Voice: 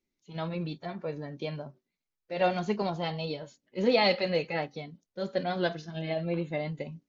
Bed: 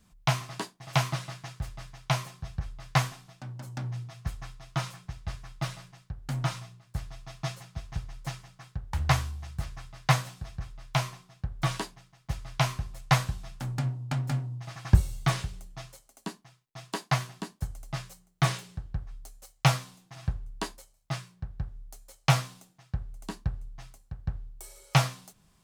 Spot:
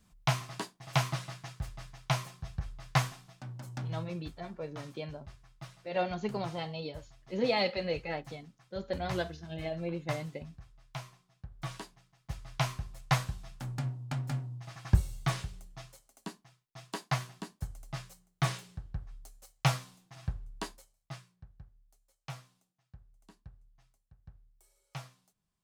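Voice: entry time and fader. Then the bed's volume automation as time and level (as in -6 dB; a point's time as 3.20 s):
3.55 s, -5.0 dB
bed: 4.05 s -3 dB
4.29 s -14.5 dB
11.21 s -14.5 dB
12.55 s -5 dB
20.70 s -5 dB
21.83 s -21 dB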